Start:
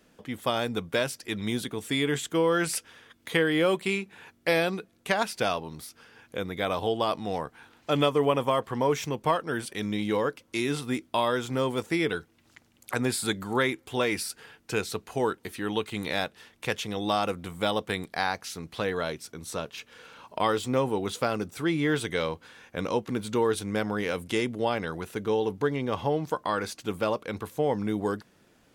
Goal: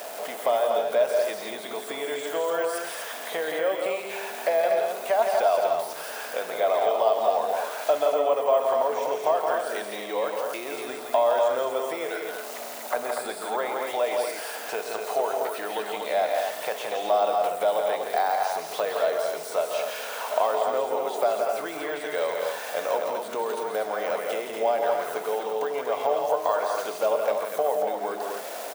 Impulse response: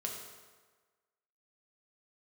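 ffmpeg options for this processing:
-filter_complex "[0:a]aeval=exprs='val(0)+0.5*0.0141*sgn(val(0))':c=same,deesser=0.95,highshelf=f=8.5k:g=9,acompressor=threshold=-32dB:ratio=3,highpass=f=640:t=q:w=4.9,aecho=1:1:131.2|169.1|242:0.282|0.562|0.562,asplit=2[a][b];[1:a]atrim=start_sample=2205[c];[b][c]afir=irnorm=-1:irlink=0,volume=-6dB[d];[a][d]amix=inputs=2:normalize=0"

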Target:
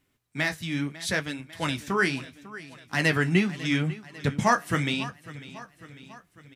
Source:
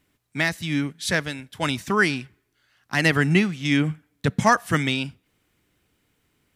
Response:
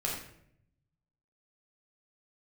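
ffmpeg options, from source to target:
-af "aecho=1:1:548|1096|1644|2192|2740:0.141|0.0805|0.0459|0.0262|0.0149,flanger=delay=7.5:depth=9:regen=-45:speed=0.76:shape=sinusoidal"

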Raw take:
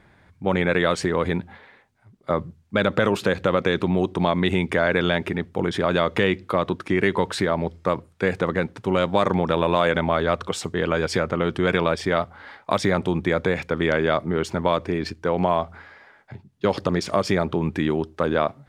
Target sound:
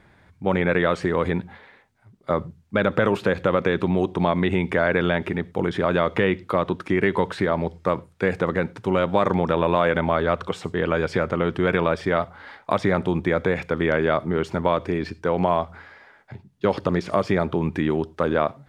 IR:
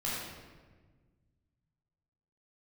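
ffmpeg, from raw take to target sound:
-filter_complex "[0:a]asplit=2[a][b];[1:a]atrim=start_sample=2205,atrim=end_sample=3528,asetrate=32634,aresample=44100[c];[b][c]afir=irnorm=-1:irlink=0,volume=-28.5dB[d];[a][d]amix=inputs=2:normalize=0,acrossover=split=2900[e][f];[f]acompressor=threshold=-43dB:ratio=4:attack=1:release=60[g];[e][g]amix=inputs=2:normalize=0"

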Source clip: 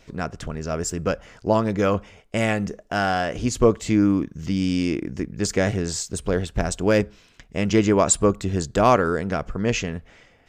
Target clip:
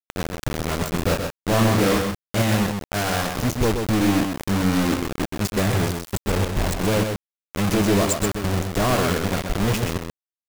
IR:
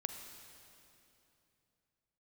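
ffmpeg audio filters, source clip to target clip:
-filter_complex "[0:a]lowshelf=f=250:g=11,asettb=1/sr,asplit=3[a][b][c];[a]atrim=end=8.104[d];[b]atrim=start=8.1:end=8.68,asetpts=PTS-STARTPTS,afade=t=in:d=0.004:c=qsin,afade=t=out:st=0.576:d=0.004:c=qsin,acompressor=threshold=-15dB:ratio=4[e];[c]atrim=start=8.676[f];[d][e]acrossfade=d=0.004:c1=hsin:c2=qsin[g];[g][f]acrossfade=d=0.004:c1=qsin:c2=hsin,flanger=delay=6.3:depth=4.1:regen=-53:speed=1.7:shape=triangular,asoftclip=type=tanh:threshold=-17dB,acrusher=bits=3:mix=0:aa=0.000001,asettb=1/sr,asplit=3[h][i][j];[h]atrim=end=0.954[k];[i]atrim=start=0.95:end=2.42,asetpts=PTS-STARTPTS,afade=t=in:d=0.004:c=qsin,afade=t=out:st=1.466:d=0.004:c=qsin,asplit=2[l][m];[m]adelay=35,volume=-2.5dB[n];[l][n]amix=inputs=2:normalize=0,atrim=end_sample=64827[o];[j]atrim=start=2.416[p];[k][o]acrossfade=d=0.004:c1=hsin:c2=qsin[q];[q][p]acrossfade=d=0.004:c1=qsin:c2=hsin,aecho=1:1:128:0.531"

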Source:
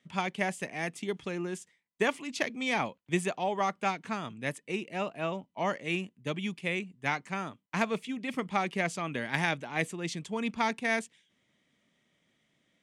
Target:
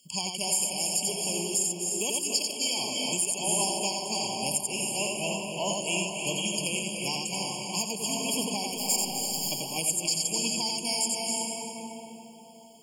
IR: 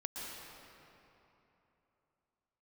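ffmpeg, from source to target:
-filter_complex "[0:a]asettb=1/sr,asplit=3[a][b][c];[a]atrim=end=8.684[d];[b]atrim=start=8.68:end=9.52,asetpts=PTS-STARTPTS,afade=t=in:d=0.004:c=qsin,afade=t=out:st=0.836:d=0.004:c=qsin,aeval=exprs='(tanh(158*val(0)+0.75)-tanh(0.75))/158':c=same[e];[c]atrim=start=9.516[f];[d][e]acrossfade=d=0.004:c1=hsin:c2=qsin[g];[g][f]acrossfade=d=0.004:c1=qsin:c2=hsin,aexciter=amount=11.6:drive=9.5:freq=3.5k,asplit=2[h][i];[1:a]atrim=start_sample=2205,asetrate=31311,aresample=44100,adelay=87[j];[i][j]afir=irnorm=-1:irlink=0,volume=-1.5dB[k];[h][k]amix=inputs=2:normalize=0,alimiter=limit=-9dB:level=0:latency=1:release=426,afftfilt=real='re*eq(mod(floor(b*sr/1024/1100),2),0)':imag='im*eq(mod(floor(b*sr/1024/1100),2),0)':win_size=1024:overlap=0.75,volume=-2.5dB"

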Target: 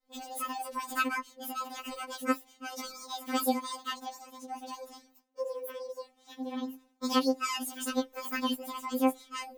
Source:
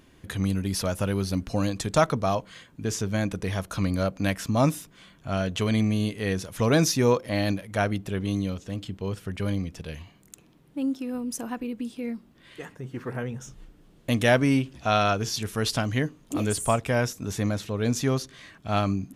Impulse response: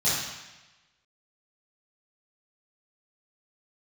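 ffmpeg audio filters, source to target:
-af "asetrate=88200,aresample=44100,agate=range=-33dB:threshold=-46dB:ratio=3:detection=peak,afftfilt=real='re*3.46*eq(mod(b,12),0)':imag='im*3.46*eq(mod(b,12),0)':win_size=2048:overlap=0.75,volume=-5dB"

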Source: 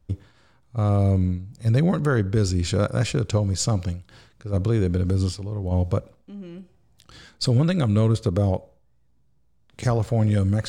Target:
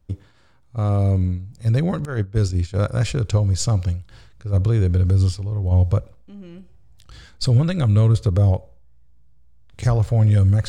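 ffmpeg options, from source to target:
-filter_complex "[0:a]asubboost=boost=4.5:cutoff=99,asettb=1/sr,asplit=3[a][b][c];[a]atrim=end=2.054[d];[b]atrim=start=2.05:end=2.79,asetpts=PTS-STARTPTS,afade=t=in:d=0.004:c=qsin,afade=t=out:st=0.736:d=0.004:c=qsin,agate=range=-16dB:threshold=-18dB:ratio=16:detection=peak[e];[c]atrim=start=2.786[f];[d][e]acrossfade=d=0.004:c1=hsin:c2=qsin[g];[g][f]acrossfade=d=0.004:c1=qsin:c2=hsin"

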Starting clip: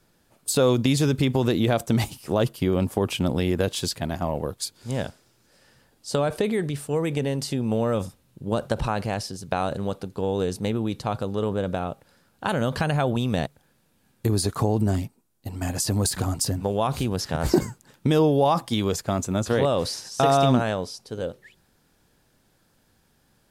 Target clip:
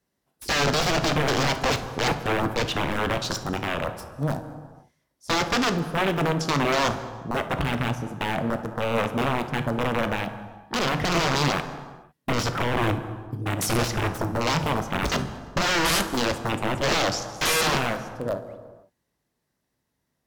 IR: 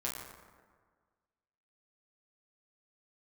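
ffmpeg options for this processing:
-filter_complex "[0:a]highpass=43,aeval=exprs='(mod(9.44*val(0)+1,2)-1)/9.44':c=same,afwtdn=0.0224,asetrate=51156,aresample=44100,asplit=2[a][b];[1:a]atrim=start_sample=2205,afade=t=out:st=0.43:d=0.01,atrim=end_sample=19404,asetrate=32634,aresample=44100[c];[b][c]afir=irnorm=-1:irlink=0,volume=-8.5dB[d];[a][d]amix=inputs=2:normalize=0"

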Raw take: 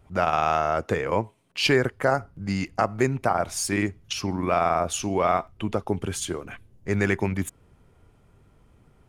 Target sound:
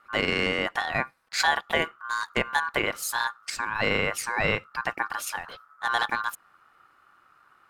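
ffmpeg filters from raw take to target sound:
-af "aeval=exprs='val(0)*sin(2*PI*1100*n/s)':c=same,asetrate=52038,aresample=44100"

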